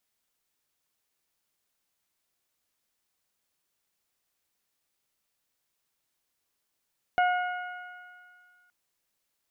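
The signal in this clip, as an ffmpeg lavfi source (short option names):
-f lavfi -i "aevalsrc='0.1*pow(10,-3*t/1.58)*sin(2*PI*722*t)+0.0501*pow(10,-3*t/2.46)*sin(2*PI*1444*t)+0.02*pow(10,-3*t/1.92)*sin(2*PI*2166*t)+0.0112*pow(10,-3*t/1.9)*sin(2*PI*2888*t)':d=1.52:s=44100"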